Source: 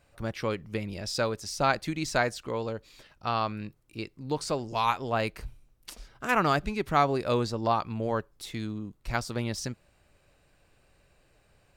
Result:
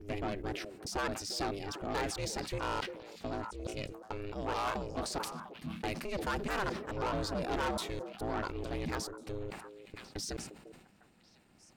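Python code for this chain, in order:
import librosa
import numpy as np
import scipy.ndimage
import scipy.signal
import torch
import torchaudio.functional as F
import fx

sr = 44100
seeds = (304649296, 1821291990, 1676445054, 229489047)

p1 = fx.block_reorder(x, sr, ms=216.0, group=4)
p2 = p1 * np.sin(2.0 * np.pi * 200.0 * np.arange(len(p1)) / sr)
p3 = 10.0 ** (-28.5 / 20.0) * np.tanh(p2 / 10.0 ** (-28.5 / 20.0))
p4 = p3 + fx.echo_stepped(p3, sr, ms=350, hz=430.0, octaves=1.4, feedback_pct=70, wet_db=-9.5, dry=0)
y = fx.sustainer(p4, sr, db_per_s=67.0)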